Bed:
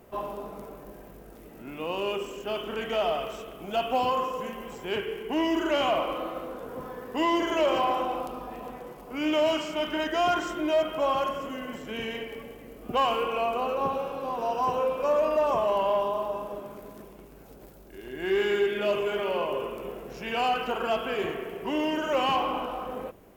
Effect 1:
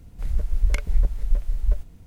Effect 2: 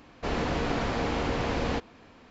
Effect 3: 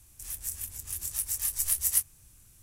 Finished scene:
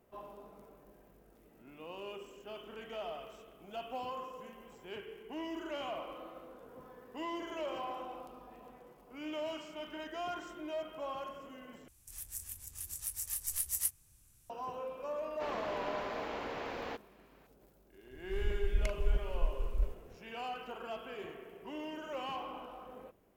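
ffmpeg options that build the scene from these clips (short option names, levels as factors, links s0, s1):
-filter_complex "[0:a]volume=0.178[s0];[2:a]bass=f=250:g=-15,treble=f=4000:g=-7[s1];[s0]asplit=2[s2][s3];[s2]atrim=end=11.884[s4];[3:a]atrim=end=2.62,asetpts=PTS-STARTPTS,volume=0.398[s5];[s3]atrim=start=14.496[s6];[s1]atrim=end=2.3,asetpts=PTS-STARTPTS,volume=0.355,afade=t=in:d=0.004:c=hsin,afade=t=out:st=2.296:d=0.004:c=hsin,adelay=15170[s7];[1:a]atrim=end=2.06,asetpts=PTS-STARTPTS,volume=0.282,afade=t=in:d=0.004:c=hsin,afade=t=out:st=2.056:d=0.004:c=hsin,adelay=18110[s8];[s4][s5]acrossfade=d=0.004:c1=hsin:c2=hsin[s9];[s9][s6]acrossfade=d=0.004:c1=hsin:c2=hsin[s10];[s10][s7][s8]amix=inputs=3:normalize=0"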